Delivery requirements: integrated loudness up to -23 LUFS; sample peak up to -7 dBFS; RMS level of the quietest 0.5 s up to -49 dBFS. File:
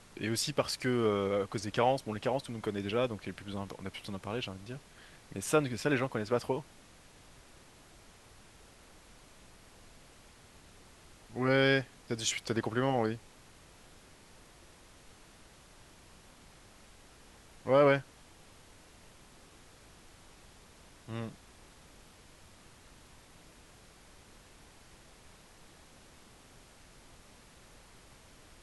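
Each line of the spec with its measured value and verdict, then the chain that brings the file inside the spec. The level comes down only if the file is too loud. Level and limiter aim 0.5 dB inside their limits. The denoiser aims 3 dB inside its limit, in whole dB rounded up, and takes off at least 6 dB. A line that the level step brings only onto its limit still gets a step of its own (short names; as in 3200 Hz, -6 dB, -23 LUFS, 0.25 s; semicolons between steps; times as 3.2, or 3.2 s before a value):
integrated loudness -32.5 LUFS: OK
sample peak -12.0 dBFS: OK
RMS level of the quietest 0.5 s -57 dBFS: OK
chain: none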